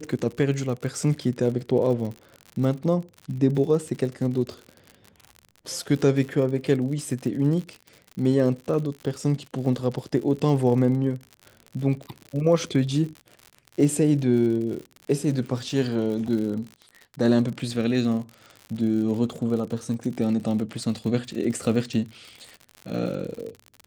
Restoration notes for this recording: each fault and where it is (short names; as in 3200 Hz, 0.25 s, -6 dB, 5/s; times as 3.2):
crackle 67/s -32 dBFS